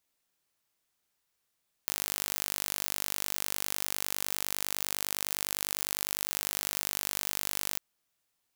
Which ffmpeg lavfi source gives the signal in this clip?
ffmpeg -f lavfi -i "aevalsrc='0.562*eq(mod(n,884),0)':duration=5.9:sample_rate=44100" out.wav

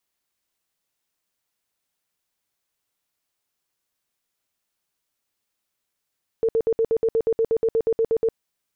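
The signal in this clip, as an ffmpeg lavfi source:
ffmpeg -f lavfi -i "aevalsrc='0.15*sin(2*PI*452*mod(t,0.12))*lt(mod(t,0.12),26/452)':duration=1.92:sample_rate=44100" out.wav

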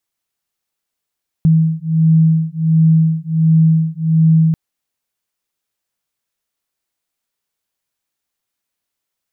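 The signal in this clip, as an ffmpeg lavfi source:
ffmpeg -f lavfi -i "aevalsrc='0.237*(sin(2*PI*160*t)+sin(2*PI*161.4*t))':duration=3.09:sample_rate=44100" out.wav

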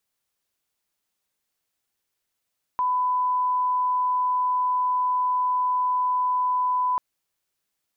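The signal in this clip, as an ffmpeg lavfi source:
ffmpeg -f lavfi -i "sine=frequency=1000:duration=4.19:sample_rate=44100,volume=-1.94dB" out.wav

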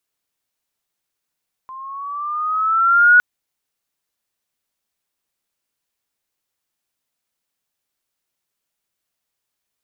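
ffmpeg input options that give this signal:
ffmpeg -f lavfi -i "aevalsrc='pow(10,(-6+25.5*(t/1.51-1))/20)*sin(2*PI*1040*1.51/(6*log(2)/12)*(exp(6*log(2)/12*t/1.51)-1))':duration=1.51:sample_rate=44100" out.wav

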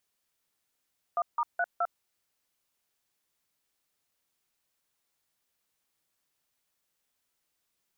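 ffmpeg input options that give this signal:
ffmpeg -f lavfi -i "aevalsrc='0.0422*clip(min(mod(t,0.211),0.05-mod(t,0.211))/0.002,0,1)*(eq(floor(t/0.211),0)*(sin(2*PI*697*mod(t,0.211))+sin(2*PI*1209*mod(t,0.211)))+eq(floor(t/0.211),1)*(sin(2*PI*941*mod(t,0.211))+sin(2*PI*1209*mod(t,0.211)))+eq(floor(t/0.211),2)*(sin(2*PI*697*mod(t,0.211))+sin(2*PI*1477*mod(t,0.211)))+eq(floor(t/0.211),3)*(sin(2*PI*697*mod(t,0.211))+sin(2*PI*1336*mod(t,0.211))))':duration=0.844:sample_rate=44100" out.wav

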